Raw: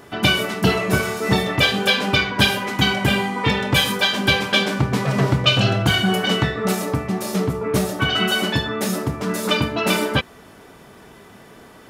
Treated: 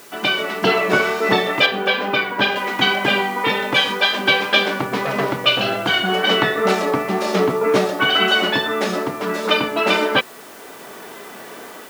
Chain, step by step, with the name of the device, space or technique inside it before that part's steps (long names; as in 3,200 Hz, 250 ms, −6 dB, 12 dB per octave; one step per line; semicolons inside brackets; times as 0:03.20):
dictaphone (band-pass filter 330–3,900 Hz; automatic gain control gain up to 11 dB; tape wow and flutter 20 cents; white noise bed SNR 25 dB)
high-pass filter 75 Hz
0:01.66–0:02.56: parametric band 8,100 Hz −9 dB 2.6 octaves
level −1 dB